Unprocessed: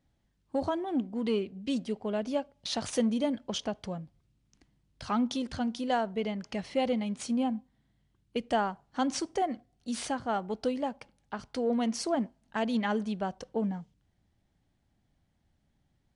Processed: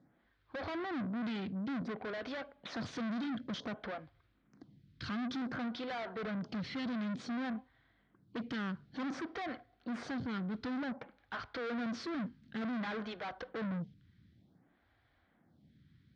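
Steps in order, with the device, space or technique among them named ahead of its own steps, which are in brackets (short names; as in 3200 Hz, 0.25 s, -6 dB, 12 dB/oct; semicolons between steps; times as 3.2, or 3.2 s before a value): vibe pedal into a guitar amplifier (photocell phaser 0.55 Hz; tube stage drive 48 dB, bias 0.3; speaker cabinet 96–3900 Hz, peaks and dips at 400 Hz -4 dB, 590 Hz -5 dB, 870 Hz -7 dB, 1500 Hz +3 dB, 2800 Hz -7 dB); gain +13 dB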